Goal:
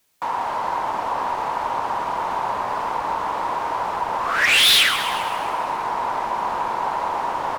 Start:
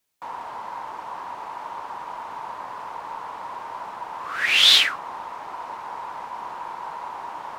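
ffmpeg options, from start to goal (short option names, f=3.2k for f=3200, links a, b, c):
-filter_complex "[0:a]asplit=2[a][b];[b]acompressor=threshold=-32dB:ratio=6,volume=1dB[c];[a][c]amix=inputs=2:normalize=0,asoftclip=type=hard:threshold=-16.5dB,asplit=9[d][e][f][g][h][i][j][k][l];[e]adelay=133,afreqshift=-140,volume=-10.5dB[m];[f]adelay=266,afreqshift=-280,volume=-14.4dB[n];[g]adelay=399,afreqshift=-420,volume=-18.3dB[o];[h]adelay=532,afreqshift=-560,volume=-22.1dB[p];[i]adelay=665,afreqshift=-700,volume=-26dB[q];[j]adelay=798,afreqshift=-840,volume=-29.9dB[r];[k]adelay=931,afreqshift=-980,volume=-33.8dB[s];[l]adelay=1064,afreqshift=-1120,volume=-37.6dB[t];[d][m][n][o][p][q][r][s][t]amix=inputs=9:normalize=0,volume=4dB"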